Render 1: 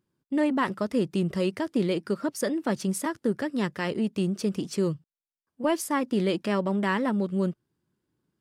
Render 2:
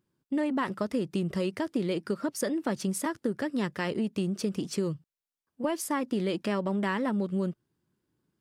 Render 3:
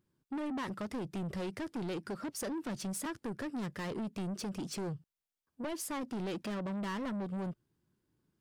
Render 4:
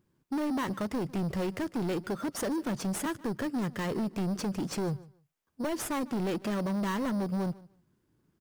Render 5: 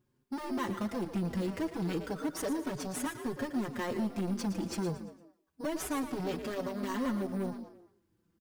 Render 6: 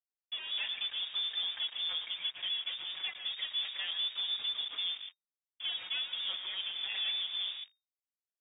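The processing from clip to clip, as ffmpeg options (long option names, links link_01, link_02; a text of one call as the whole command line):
ffmpeg -i in.wav -af "acompressor=threshold=-25dB:ratio=6" out.wav
ffmpeg -i in.wav -af "lowshelf=frequency=80:gain=7.5,asoftclip=type=tanh:threshold=-32.5dB,volume=-2dB" out.wav
ffmpeg -i in.wav -filter_complex "[0:a]aecho=1:1:150|300:0.0891|0.016,asplit=2[link_01][link_02];[link_02]acrusher=samples=9:mix=1:aa=0.000001,volume=-4.5dB[link_03];[link_01][link_03]amix=inputs=2:normalize=0,volume=2.5dB" out.wav
ffmpeg -i in.wav -filter_complex "[0:a]asplit=2[link_01][link_02];[link_02]asplit=4[link_03][link_04][link_05][link_06];[link_03]adelay=114,afreqshift=56,volume=-10.5dB[link_07];[link_04]adelay=228,afreqshift=112,volume=-18.7dB[link_08];[link_05]adelay=342,afreqshift=168,volume=-26.9dB[link_09];[link_06]adelay=456,afreqshift=224,volume=-35dB[link_10];[link_07][link_08][link_09][link_10]amix=inputs=4:normalize=0[link_11];[link_01][link_11]amix=inputs=2:normalize=0,asplit=2[link_12][link_13];[link_13]adelay=5.1,afreqshift=-0.29[link_14];[link_12][link_14]amix=inputs=2:normalize=1" out.wav
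ffmpeg -i in.wav -af "acrusher=bits=6:mix=0:aa=0.5,lowpass=frequency=3100:width_type=q:width=0.5098,lowpass=frequency=3100:width_type=q:width=0.6013,lowpass=frequency=3100:width_type=q:width=0.9,lowpass=frequency=3100:width_type=q:width=2.563,afreqshift=-3700,volume=-2.5dB" out.wav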